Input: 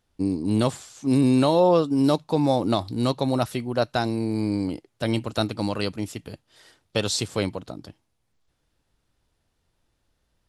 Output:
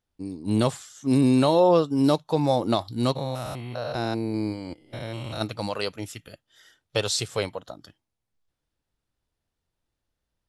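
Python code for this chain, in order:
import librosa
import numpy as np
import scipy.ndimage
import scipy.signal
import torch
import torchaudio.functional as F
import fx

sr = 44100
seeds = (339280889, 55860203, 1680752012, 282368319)

y = fx.spec_steps(x, sr, hold_ms=200, at=(3.15, 5.4), fade=0.02)
y = fx.noise_reduce_blind(y, sr, reduce_db=10)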